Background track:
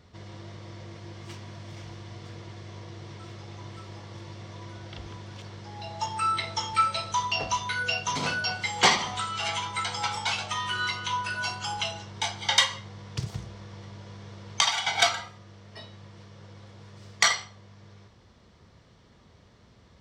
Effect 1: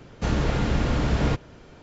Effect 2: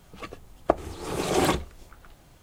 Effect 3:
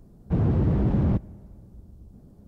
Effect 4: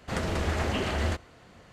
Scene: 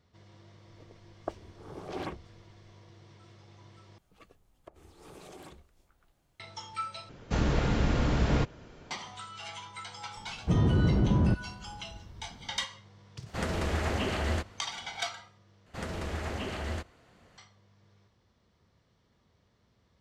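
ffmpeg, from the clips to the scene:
-filter_complex "[2:a]asplit=2[s0][s1];[4:a]asplit=2[s2][s3];[0:a]volume=0.237[s4];[s0]afwtdn=0.02[s5];[s1]acompressor=threshold=0.0447:ratio=6:attack=3.2:release=140:knee=1:detection=peak[s6];[s4]asplit=4[s7][s8][s9][s10];[s7]atrim=end=3.984[s11];[s6]atrim=end=2.42,asetpts=PTS-STARTPTS,volume=0.126[s12];[s8]atrim=start=6.396:end=7.094[s13];[1:a]atrim=end=1.82,asetpts=PTS-STARTPTS,volume=0.668[s14];[s9]atrim=start=8.906:end=15.664[s15];[s3]atrim=end=1.72,asetpts=PTS-STARTPTS,volume=0.447[s16];[s10]atrim=start=17.376[s17];[s5]atrim=end=2.42,asetpts=PTS-STARTPTS,volume=0.188,afade=t=in:d=0.004:c=hsin,afade=t=out:st=2.416:d=0.004:c=hsin,adelay=580[s18];[3:a]atrim=end=2.47,asetpts=PTS-STARTPTS,volume=0.75,afade=t=in:d=0.004:c=hsin,afade=t=out:st=2.466:d=0.004:c=hsin,adelay=10170[s19];[s2]atrim=end=1.72,asetpts=PTS-STARTPTS,volume=0.794,afade=t=in:d=0.004:c=hsin,afade=t=out:st=1.716:d=0.004:c=hsin,adelay=13260[s20];[s11][s12]acrossfade=d=0.004:c1=hsin:c2=hsin[s21];[s21][s13]acrossfade=d=0.004:c1=hsin:c2=hsin[s22];[s22][s14]acrossfade=d=0.004:c1=hsin:c2=hsin[s23];[s23][s15]acrossfade=d=0.004:c1=hsin:c2=hsin[s24];[s24][s16]acrossfade=d=0.004:c1=hsin:c2=hsin[s25];[s25][s17]acrossfade=d=0.004:c1=hsin:c2=hsin[s26];[s26][s18][s19][s20]amix=inputs=4:normalize=0"

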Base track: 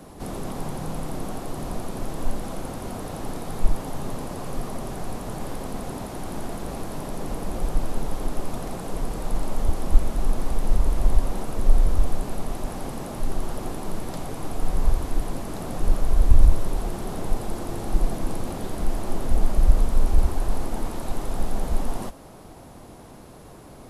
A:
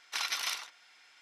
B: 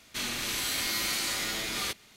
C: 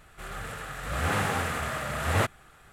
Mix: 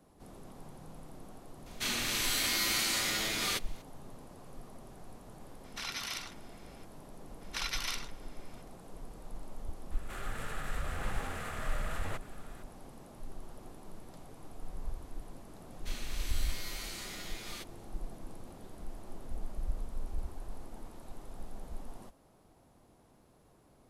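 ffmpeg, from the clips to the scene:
-filter_complex "[2:a]asplit=2[s0][s1];[1:a]asplit=2[s2][s3];[0:a]volume=0.112[s4];[s2]alimiter=level_in=1.06:limit=0.0631:level=0:latency=1:release=67,volume=0.944[s5];[3:a]acompressor=threshold=0.0158:ratio=6:attack=3.2:release=140:knee=1:detection=peak[s6];[s0]atrim=end=2.16,asetpts=PTS-STARTPTS,volume=0.944,afade=t=in:d=0.004:c=hsin,afade=t=out:st=2.156:d=0.004:c=hsin,adelay=1660[s7];[s5]atrim=end=1.21,asetpts=PTS-STARTPTS,volume=0.75,afade=t=in:d=0.004:c=hsin,afade=t=out:st=1.206:d=0.004:c=hsin,adelay=5640[s8];[s3]atrim=end=1.21,asetpts=PTS-STARTPTS,volume=0.708,afade=t=in:d=0.004:c=hsin,afade=t=out:st=1.206:d=0.004:c=hsin,adelay=7410[s9];[s6]atrim=end=2.72,asetpts=PTS-STARTPTS,volume=0.841,afade=t=in:d=0.004:c=hsin,afade=t=out:st=2.716:d=0.004:c=hsin,adelay=9910[s10];[s1]atrim=end=2.16,asetpts=PTS-STARTPTS,volume=0.224,afade=t=in:d=0.004:c=hsin,afade=t=out:st=2.156:d=0.004:c=hsin,adelay=15710[s11];[s4][s7][s8][s9][s10][s11]amix=inputs=6:normalize=0"

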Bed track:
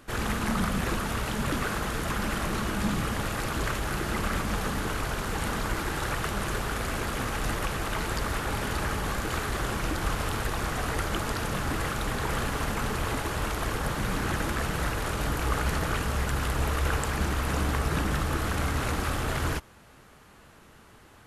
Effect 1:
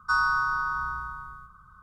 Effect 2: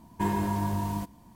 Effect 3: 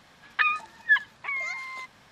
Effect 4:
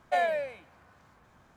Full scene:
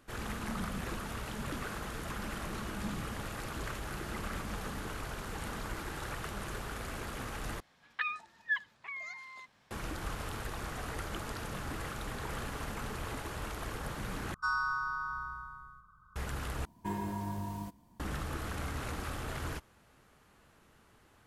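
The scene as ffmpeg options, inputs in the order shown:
-filter_complex "[0:a]volume=0.316,asplit=4[s0][s1][s2][s3];[s0]atrim=end=7.604[s4];[3:a]atrim=end=2.11,asetpts=PTS-STARTPTS,volume=0.266[s5];[s1]atrim=start=9.706:end=14.344[s6];[1:a]atrim=end=1.82,asetpts=PTS-STARTPTS,volume=0.376[s7];[s2]atrim=start=16.156:end=16.654[s8];[2:a]atrim=end=1.35,asetpts=PTS-STARTPTS,volume=0.355[s9];[s3]atrim=start=17.996[s10];[s4][s5]acrossfade=d=0.004:c1=hsin:c2=hsin[s11];[s11][s6]acrossfade=d=0.004:c1=hsin:c2=hsin[s12];[s12][s7]acrossfade=d=0.004:c1=hsin:c2=hsin[s13];[s13][s8]acrossfade=d=0.004:c1=hsin:c2=hsin[s14];[s14][s9]acrossfade=d=0.004:c1=hsin:c2=hsin[s15];[s15][s10]acrossfade=d=0.004:c1=hsin:c2=hsin"

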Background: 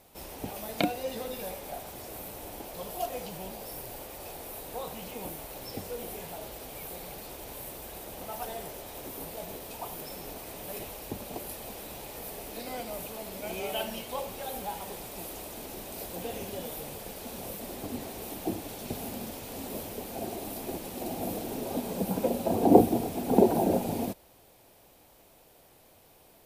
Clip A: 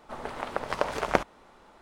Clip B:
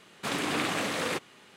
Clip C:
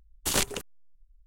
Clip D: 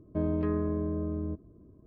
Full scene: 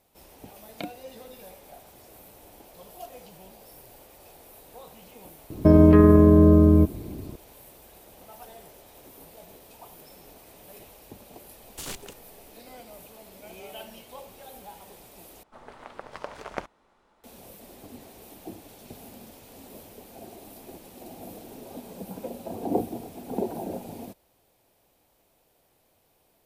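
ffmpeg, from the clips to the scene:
-filter_complex "[0:a]volume=0.376[s0];[4:a]alimiter=level_in=12.6:limit=0.891:release=50:level=0:latency=1[s1];[3:a]asoftclip=type=tanh:threshold=0.0708[s2];[s0]asplit=2[s3][s4];[s3]atrim=end=15.434[s5];[1:a]atrim=end=1.81,asetpts=PTS-STARTPTS,volume=0.316[s6];[s4]atrim=start=17.236[s7];[s1]atrim=end=1.86,asetpts=PTS-STARTPTS,volume=0.596,afade=t=in:d=0.004:c=hsin,afade=t=out:st=1.856:d=0.004:c=hsin,adelay=5500[s8];[s2]atrim=end=1.26,asetpts=PTS-STARTPTS,volume=0.422,afade=t=in:d=0.004:c=hsin,afade=t=out:st=1.256:d=0.004:c=hsin,adelay=11520[s9];[s5][s6]acrossfade=d=0.004:c1=hsin:c2=hsin[s10];[s10][s7]acrossfade=d=0.004:c1=hsin:c2=hsin[s11];[s11][s8][s9]amix=inputs=3:normalize=0"

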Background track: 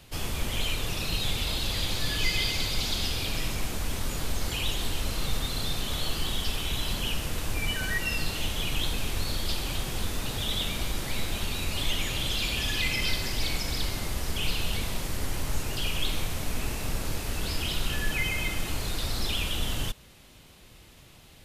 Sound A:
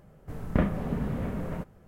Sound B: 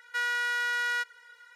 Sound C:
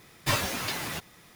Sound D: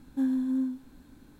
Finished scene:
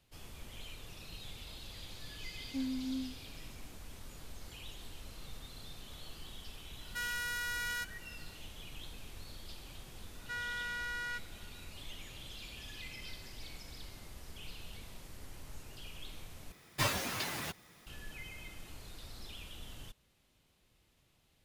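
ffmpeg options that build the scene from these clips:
-filter_complex "[2:a]asplit=2[s0][s1];[0:a]volume=0.112[s2];[s0]aemphasis=mode=production:type=75fm[s3];[s1]aresample=22050,aresample=44100[s4];[s2]asplit=2[s5][s6];[s5]atrim=end=16.524[s7];[3:a]atrim=end=1.35,asetpts=PTS-STARTPTS,volume=0.531[s8];[s6]atrim=start=17.866[s9];[4:a]atrim=end=1.39,asetpts=PTS-STARTPTS,volume=0.316,afade=t=in:d=0.004:c=hsin,afade=t=out:st=1.386:d=0.004:c=hsin,adelay=2370[s10];[s3]atrim=end=1.55,asetpts=PTS-STARTPTS,volume=0.299,afade=t=in:d=0.004:c=hsin,afade=t=out:st=1.546:d=0.004:c=hsin,adelay=6810[s11];[s4]atrim=end=1.55,asetpts=PTS-STARTPTS,volume=0.299,afade=t=in:d=0.004:c=hsin,afade=t=out:st=1.546:d=0.004:c=hsin,adelay=10150[s12];[s7][s8]acrossfade=d=0.004:c1=hsin:c2=hsin[s13];[s13][s9]acrossfade=d=0.004:c1=hsin:c2=hsin[s14];[s14][s10][s11][s12]amix=inputs=4:normalize=0"

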